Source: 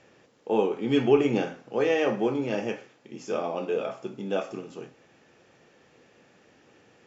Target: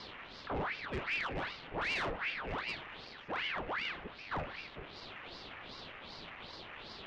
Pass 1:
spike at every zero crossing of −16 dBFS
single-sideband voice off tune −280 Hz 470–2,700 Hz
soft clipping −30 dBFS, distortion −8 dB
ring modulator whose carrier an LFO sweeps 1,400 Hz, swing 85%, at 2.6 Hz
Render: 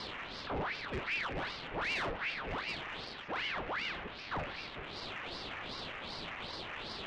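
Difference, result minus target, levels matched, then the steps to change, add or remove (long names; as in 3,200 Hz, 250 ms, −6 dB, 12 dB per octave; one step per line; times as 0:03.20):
spike at every zero crossing: distortion +6 dB
change: spike at every zero crossing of −22.5 dBFS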